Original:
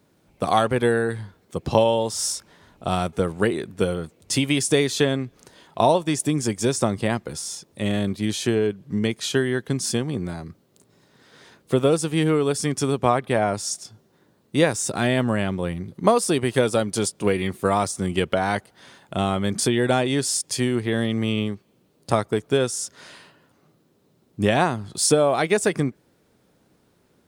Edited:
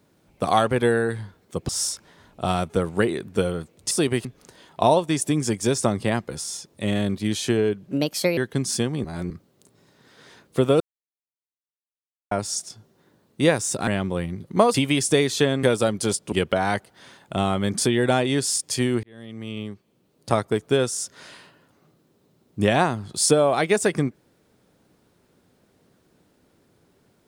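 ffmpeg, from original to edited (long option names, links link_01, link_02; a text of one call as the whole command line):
ffmpeg -i in.wav -filter_complex "[0:a]asplit=15[link_01][link_02][link_03][link_04][link_05][link_06][link_07][link_08][link_09][link_10][link_11][link_12][link_13][link_14][link_15];[link_01]atrim=end=1.692[link_16];[link_02]atrim=start=2.118:end=4.342[link_17];[link_03]atrim=start=16.218:end=16.562[link_18];[link_04]atrim=start=5.228:end=8.864[link_19];[link_05]atrim=start=8.86:end=9.52,asetpts=PTS-STARTPTS,asetrate=59094,aresample=44100[link_20];[link_06]atrim=start=9.516:end=10.192[link_21];[link_07]atrim=start=10.188:end=10.452,asetpts=PTS-STARTPTS,areverse[link_22];[link_08]atrim=start=10.448:end=11.95,asetpts=PTS-STARTPTS,afade=type=out:start_time=1.498:duration=0.004:curve=hsin[link_23];[link_09]atrim=start=11.95:end=13.46,asetpts=PTS-STARTPTS,volume=0[link_24];[link_10]atrim=start=13.46:end=15.022,asetpts=PTS-STARTPTS,afade=type=in:duration=0.004:curve=hsin[link_25];[link_11]atrim=start=15.348:end=16.222[link_26];[link_12]atrim=start=4.338:end=5.232[link_27];[link_13]atrim=start=16.558:end=17.252[link_28];[link_14]atrim=start=18.128:end=20.84,asetpts=PTS-STARTPTS,afade=type=out:start_time=2.708:duration=0.004:curve=hsin[link_29];[link_15]atrim=start=20.84,asetpts=PTS-STARTPTS,afade=type=in:duration=1.41[link_30];[link_16][link_17]acrossfade=duration=0.004:curve1=hsin:curve2=hsin[link_31];[link_31][link_18]acrossfade=duration=0.004:curve1=hsin:curve2=hsin[link_32];[link_32][link_19]acrossfade=duration=0.004:curve1=hsin:curve2=hsin[link_33];[link_33][link_20]acrossfade=duration=0.004:curve1=hsin:curve2=hsin[link_34];[link_34][link_21]acrossfade=duration=0.004:curve1=hsin:curve2=hsin[link_35];[link_35][link_22]acrossfade=duration=0.004:curve1=hsin:curve2=hsin[link_36];[link_23][link_24][link_25]concat=n=3:v=0:a=1[link_37];[link_36][link_37]acrossfade=duration=0.004:curve1=hsin:curve2=hsin[link_38];[link_38][link_26]acrossfade=duration=0.004:curve1=hsin:curve2=hsin[link_39];[link_39][link_27]acrossfade=duration=0.004:curve1=hsin:curve2=hsin[link_40];[link_40][link_28]acrossfade=duration=0.004:curve1=hsin:curve2=hsin[link_41];[link_29][link_30]concat=n=2:v=0:a=1[link_42];[link_41][link_42]acrossfade=duration=0.004:curve1=hsin:curve2=hsin" out.wav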